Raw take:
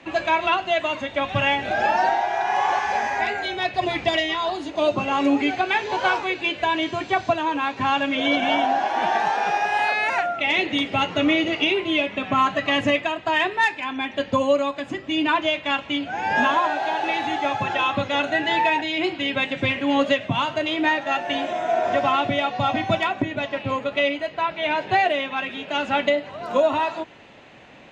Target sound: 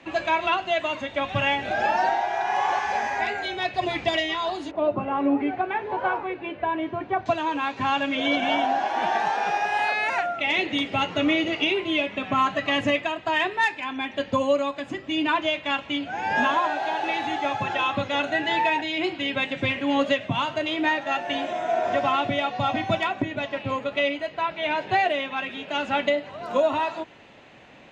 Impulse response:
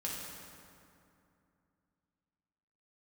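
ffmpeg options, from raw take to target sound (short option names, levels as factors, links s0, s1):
-filter_complex "[0:a]asettb=1/sr,asplit=3[s0][s1][s2];[s0]atrim=end=4.714[s3];[s1]atrim=start=4.71:end=7.26,asetpts=PTS-STARTPTS,afade=t=in:d=0.004:c=qsin,afade=t=out:st=2.546:d=0.004:c=qsin,lowpass=1400[s4];[s2]atrim=start=7.256[s5];[s3][s4]acrossfade=d=0.004:c1=hsin:c2=qsin[s6];[s6][s5]acrossfade=d=0.004:c1=qsin:c2=hsin,volume=0.75"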